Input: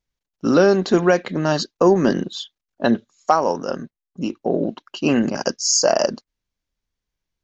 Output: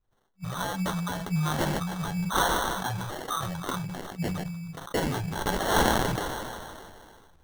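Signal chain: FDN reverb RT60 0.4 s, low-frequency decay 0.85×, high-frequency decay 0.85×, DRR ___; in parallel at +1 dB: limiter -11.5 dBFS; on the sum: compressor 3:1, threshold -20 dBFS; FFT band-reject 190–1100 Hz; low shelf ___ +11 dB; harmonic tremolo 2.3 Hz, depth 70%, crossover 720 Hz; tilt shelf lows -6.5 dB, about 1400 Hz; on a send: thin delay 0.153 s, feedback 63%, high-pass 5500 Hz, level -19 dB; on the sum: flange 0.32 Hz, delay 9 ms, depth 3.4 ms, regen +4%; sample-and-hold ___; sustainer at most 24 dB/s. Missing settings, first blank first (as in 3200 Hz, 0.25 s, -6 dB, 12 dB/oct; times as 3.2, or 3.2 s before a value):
17 dB, 410 Hz, 18×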